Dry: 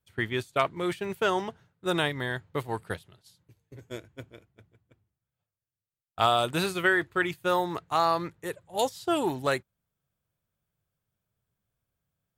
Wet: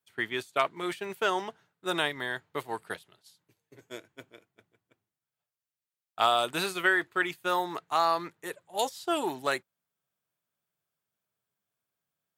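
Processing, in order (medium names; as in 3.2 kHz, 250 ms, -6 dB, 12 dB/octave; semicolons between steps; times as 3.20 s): high-pass 150 Hz 12 dB/octave; bass shelf 260 Hz -11 dB; band-stop 520 Hz, Q 12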